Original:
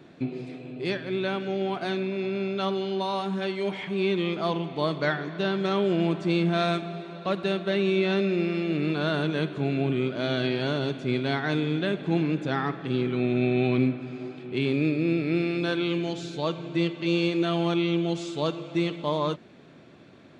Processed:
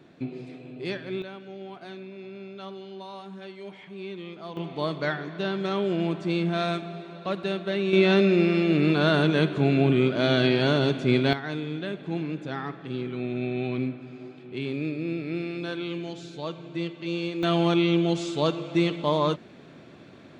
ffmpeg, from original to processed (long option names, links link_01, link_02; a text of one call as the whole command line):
ffmpeg -i in.wav -af "asetnsamples=nb_out_samples=441:pad=0,asendcmd='1.22 volume volume -12dB;4.57 volume volume -2dB;7.93 volume volume 5dB;11.33 volume volume -5.5dB;17.43 volume volume 3dB',volume=-3dB" out.wav